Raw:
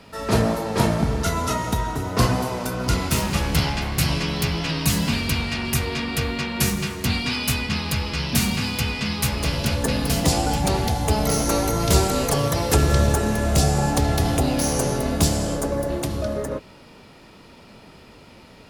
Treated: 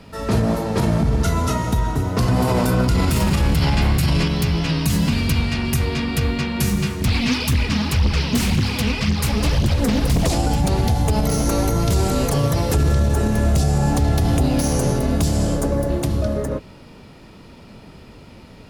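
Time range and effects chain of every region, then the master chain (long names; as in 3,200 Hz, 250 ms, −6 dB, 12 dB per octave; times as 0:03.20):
0:02.28–0:04.28: notch filter 6,100 Hz, Q 13 + envelope flattener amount 70%
0:07.01–0:10.35: phase shifter 1.9 Hz, delay 4.9 ms, feedback 63% + highs frequency-modulated by the lows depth 0.84 ms
whole clip: low-shelf EQ 290 Hz +8.5 dB; brickwall limiter −9.5 dBFS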